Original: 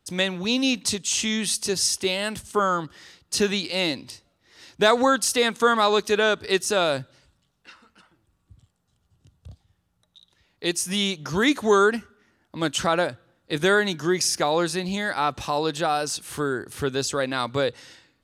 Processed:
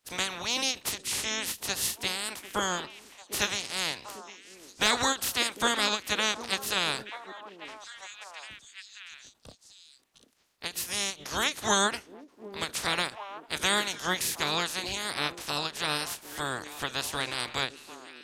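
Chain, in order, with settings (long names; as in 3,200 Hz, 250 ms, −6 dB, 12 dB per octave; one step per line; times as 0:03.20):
ceiling on every frequency bin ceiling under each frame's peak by 28 dB
echo through a band-pass that steps 748 ms, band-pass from 320 Hz, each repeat 1.4 octaves, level −8.5 dB
every ending faded ahead of time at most 270 dB per second
level −6.5 dB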